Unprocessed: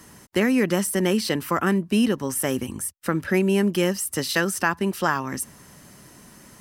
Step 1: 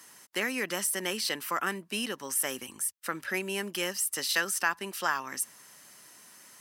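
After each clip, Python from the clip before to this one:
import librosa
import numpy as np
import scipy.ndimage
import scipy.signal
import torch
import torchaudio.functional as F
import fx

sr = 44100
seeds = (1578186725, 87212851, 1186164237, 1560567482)

y = fx.highpass(x, sr, hz=1500.0, slope=6)
y = y * 10.0 ** (-1.5 / 20.0)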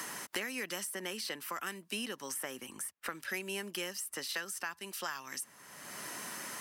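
y = fx.band_squash(x, sr, depth_pct=100)
y = y * 10.0 ** (-8.5 / 20.0)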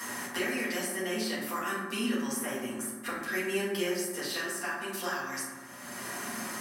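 y = fx.rev_fdn(x, sr, rt60_s=1.4, lf_ratio=1.35, hf_ratio=0.35, size_ms=25.0, drr_db=-9.5)
y = y * 10.0 ** (-3.5 / 20.0)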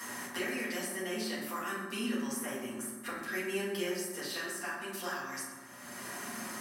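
y = x + 10.0 ** (-15.0 / 20.0) * np.pad(x, (int(123 * sr / 1000.0), 0))[:len(x)]
y = y * 10.0 ** (-4.0 / 20.0)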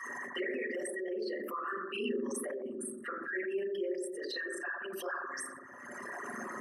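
y = fx.envelope_sharpen(x, sr, power=3.0)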